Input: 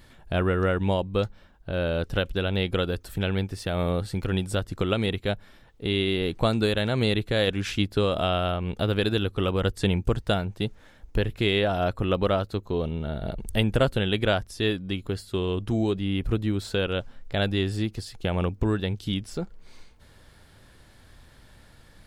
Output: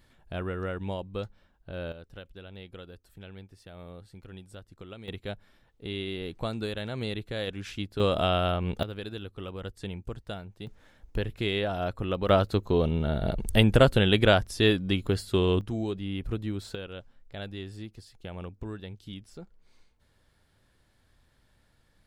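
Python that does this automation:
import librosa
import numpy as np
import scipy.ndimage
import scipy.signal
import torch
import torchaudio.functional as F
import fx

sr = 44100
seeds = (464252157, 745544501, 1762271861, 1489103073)

y = fx.gain(x, sr, db=fx.steps((0.0, -9.5), (1.92, -19.5), (5.08, -9.5), (8.0, -0.5), (8.83, -13.5), (10.67, -5.5), (12.29, 3.0), (15.61, -6.5), (16.75, -13.5)))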